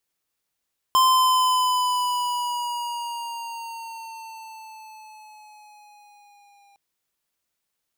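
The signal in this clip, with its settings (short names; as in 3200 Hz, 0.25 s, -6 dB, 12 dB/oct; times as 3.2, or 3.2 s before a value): gliding synth tone square, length 5.81 s, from 1040 Hz, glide -4.5 st, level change -40 dB, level -16 dB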